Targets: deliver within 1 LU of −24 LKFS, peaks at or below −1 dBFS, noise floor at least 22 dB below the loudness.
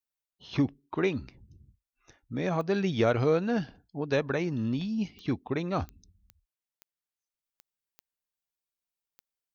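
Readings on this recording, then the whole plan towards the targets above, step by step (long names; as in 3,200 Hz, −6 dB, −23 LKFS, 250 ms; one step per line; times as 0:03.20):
number of clicks 8; integrated loudness −30.0 LKFS; sample peak −14.0 dBFS; target loudness −24.0 LKFS
→ click removal
level +6 dB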